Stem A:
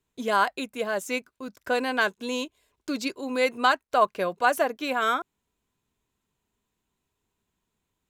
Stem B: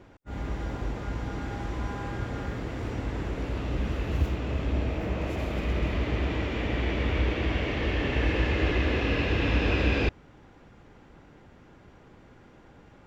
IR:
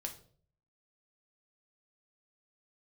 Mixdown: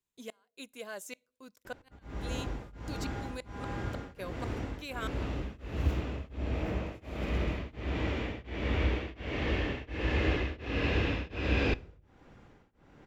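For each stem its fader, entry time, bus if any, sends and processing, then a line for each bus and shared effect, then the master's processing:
-15.5 dB, 0.00 s, send -20 dB, high shelf 2600 Hz +8 dB; flipped gate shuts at -14 dBFS, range -38 dB
-4.0 dB, 1.65 s, send -10 dB, beating tremolo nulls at 1.4 Hz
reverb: on, RT60 0.50 s, pre-delay 4 ms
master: dry

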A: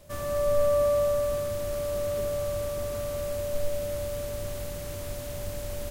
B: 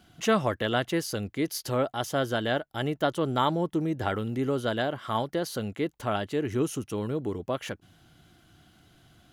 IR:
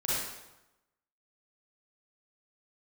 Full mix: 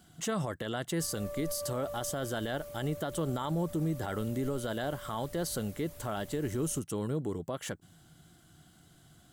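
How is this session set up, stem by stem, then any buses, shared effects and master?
-13.5 dB, 0.90 s, no send, reverb removal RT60 0.55 s
-3.0 dB, 0.00 s, no send, thirty-one-band EQ 160 Hz +7 dB, 2500 Hz -7 dB, 8000 Hz +11 dB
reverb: off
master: high shelf 10000 Hz +8.5 dB; limiter -24.5 dBFS, peak gain reduction 9.5 dB

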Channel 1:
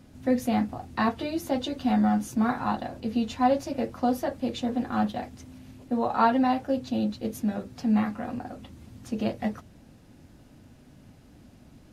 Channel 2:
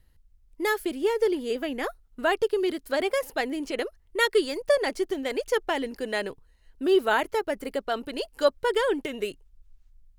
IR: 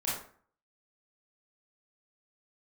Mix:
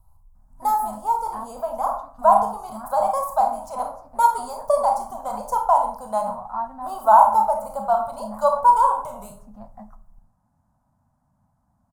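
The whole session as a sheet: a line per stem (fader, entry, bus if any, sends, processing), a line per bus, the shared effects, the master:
-15.0 dB, 0.35 s, send -18 dB, dry
+2.0 dB, 0.00 s, send -4.5 dB, fixed phaser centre 750 Hz, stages 4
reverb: on, RT60 0.50 s, pre-delay 23 ms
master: EQ curve 210 Hz 0 dB, 400 Hz -24 dB, 660 Hz +4 dB, 1000 Hz +12 dB, 2800 Hz -25 dB, 8300 Hz -2 dB

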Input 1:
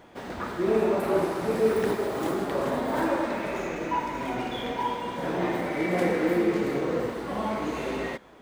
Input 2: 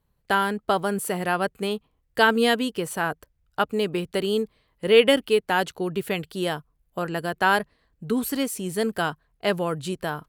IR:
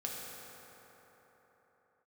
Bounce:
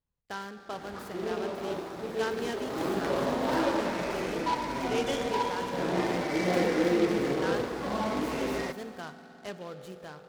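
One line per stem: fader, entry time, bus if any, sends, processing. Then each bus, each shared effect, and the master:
2.43 s -11 dB -> 2.93 s -2.5 dB, 0.55 s, send -14.5 dB, dry
-19.0 dB, 0.00 s, send -6 dB, LPF 10000 Hz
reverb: on, pre-delay 3 ms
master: noise-modulated delay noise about 2700 Hz, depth 0.035 ms

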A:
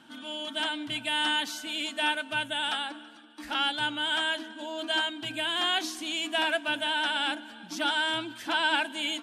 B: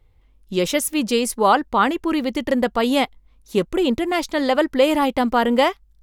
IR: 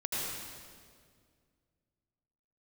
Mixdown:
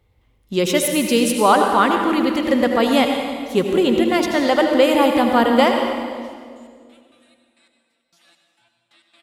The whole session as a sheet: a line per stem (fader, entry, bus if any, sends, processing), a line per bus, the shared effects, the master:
-9.5 dB, 0.40 s, send -6.5 dB, spectral gate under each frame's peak -15 dB weak; resonator 170 Hz, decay 0.28 s, harmonics all, mix 90%; step gate ".x..x.xx." 134 bpm
-2.0 dB, 0.00 s, send -4.5 dB, HPF 65 Hz 12 dB/oct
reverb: on, RT60 2.0 s, pre-delay 73 ms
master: dry

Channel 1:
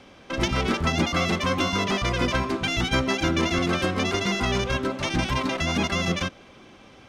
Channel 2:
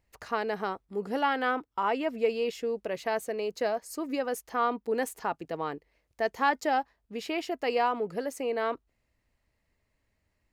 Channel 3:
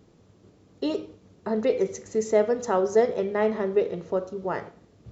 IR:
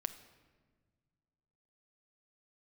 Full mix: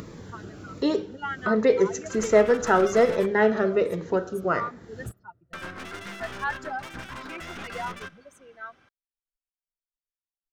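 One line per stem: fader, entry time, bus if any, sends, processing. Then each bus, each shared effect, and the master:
-17.5 dB, 1.80 s, muted 3.26–5.53, send -7 dB, one-sided fold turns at -23 dBFS
-5.5 dB, 0.00 s, no send, per-bin expansion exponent 3
+2.5 dB, 0.00 s, send -13 dB, upward compressor, threshold -34 dBFS; cascading phaser falling 1.3 Hz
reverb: on, RT60 1.5 s, pre-delay 6 ms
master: bell 1500 Hz +11 dB 0.71 oct

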